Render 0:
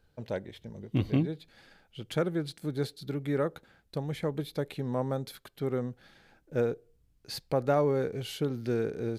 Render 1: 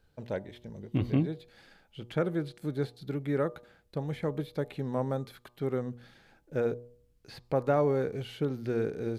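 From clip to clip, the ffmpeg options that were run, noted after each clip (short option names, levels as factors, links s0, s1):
-filter_complex "[0:a]bandreject=f=120.5:t=h:w=4,bandreject=f=241:t=h:w=4,bandreject=f=361.5:t=h:w=4,bandreject=f=482:t=h:w=4,bandreject=f=602.5:t=h:w=4,bandreject=f=723:t=h:w=4,bandreject=f=843.5:t=h:w=4,bandreject=f=964:t=h:w=4,bandreject=f=1084.5:t=h:w=4,bandreject=f=1205:t=h:w=4,acrossover=split=2900[s0][s1];[s1]acompressor=threshold=0.00178:ratio=4:attack=1:release=60[s2];[s0][s2]amix=inputs=2:normalize=0"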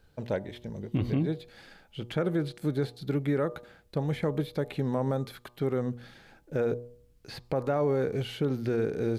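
-af "alimiter=level_in=1.12:limit=0.0631:level=0:latency=1:release=67,volume=0.891,volume=1.88"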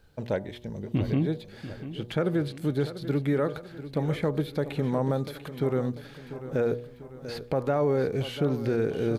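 -af "aecho=1:1:693|1386|2079|2772|3465:0.224|0.11|0.0538|0.0263|0.0129,volume=1.26"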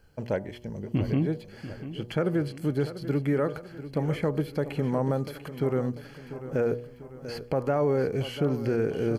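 -af "asuperstop=centerf=3700:order=4:qfactor=5.3"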